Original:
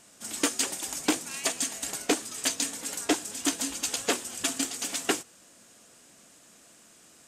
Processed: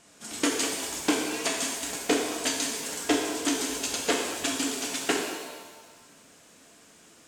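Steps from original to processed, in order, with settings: high shelf 9600 Hz -11.5 dB; shimmer reverb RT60 1.3 s, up +7 st, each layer -8 dB, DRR 0 dB

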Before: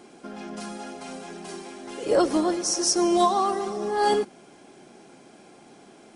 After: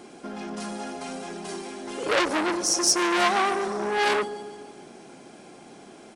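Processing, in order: feedback echo 0.145 s, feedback 56%, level -17 dB; core saturation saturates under 3000 Hz; gain +3.5 dB

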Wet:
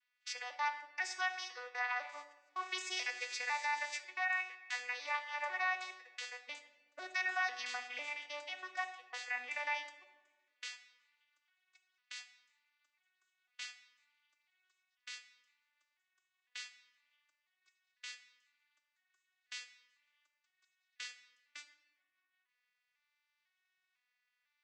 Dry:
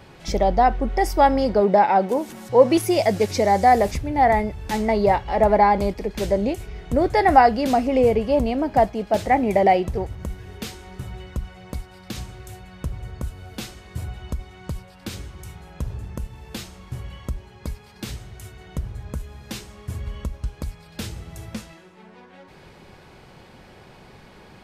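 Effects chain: arpeggiated vocoder minor triad, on B3, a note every 0.499 s; Chebyshev high-pass 1800 Hz, order 3; gate -54 dBFS, range -24 dB; limiter -32.5 dBFS, peak gain reduction 10.5 dB; on a send: reverb RT60 1.2 s, pre-delay 6 ms, DRR 8 dB; on the sum: gain +5 dB

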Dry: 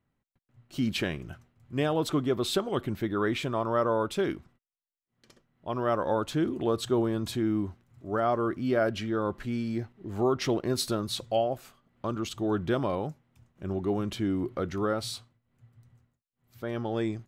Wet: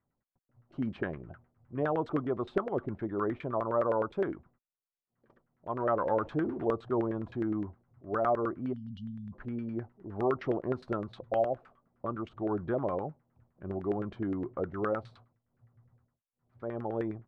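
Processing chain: 5.8–6.65 zero-crossing step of -38.5 dBFS; 8.72–9.33 spectral delete 270–2800 Hz; LFO low-pass saw down 9.7 Hz 460–1800 Hz; gain -6 dB

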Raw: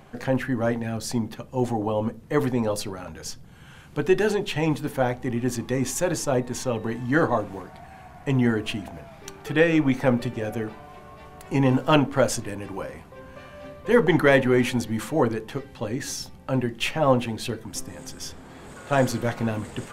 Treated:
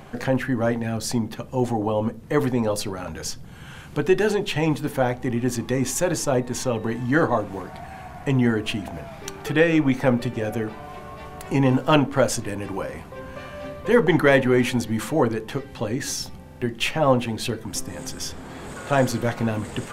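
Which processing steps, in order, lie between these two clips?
in parallel at +1 dB: compressor, threshold -35 dBFS, peak gain reduction 20.5 dB; on the sum: stuck buffer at 16.43, samples 2048, times 3

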